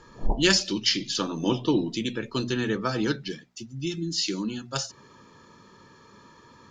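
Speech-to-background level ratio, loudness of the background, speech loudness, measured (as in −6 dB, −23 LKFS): 8.0 dB, −34.5 LKFS, −26.5 LKFS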